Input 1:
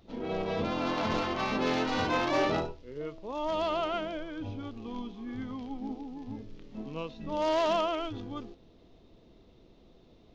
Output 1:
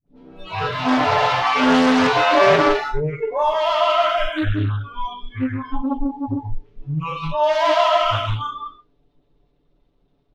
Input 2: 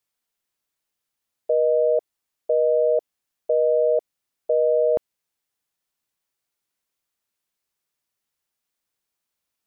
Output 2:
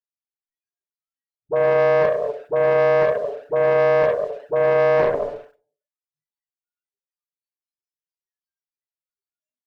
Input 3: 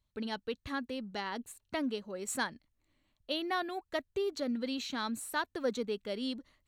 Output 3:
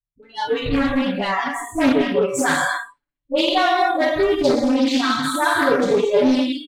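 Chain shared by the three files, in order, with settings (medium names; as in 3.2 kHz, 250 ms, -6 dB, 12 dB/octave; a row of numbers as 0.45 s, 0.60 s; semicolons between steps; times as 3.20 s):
spectral sustain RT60 0.53 s; bass shelf 140 Hz +6 dB; compression 1.5:1, threshold -31 dBFS; hum notches 60/120/180/240/300/360 Hz; gated-style reverb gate 270 ms flat, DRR 0 dB; waveshaping leveller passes 2; treble shelf 4.9 kHz -11 dB; comb 6.9 ms, depth 81%; phase dispersion highs, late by 70 ms, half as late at 610 Hz; spectral noise reduction 27 dB; loudspeaker Doppler distortion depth 0.31 ms; normalise loudness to -19 LUFS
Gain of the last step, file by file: +6.5 dB, -1.0 dB, +8.0 dB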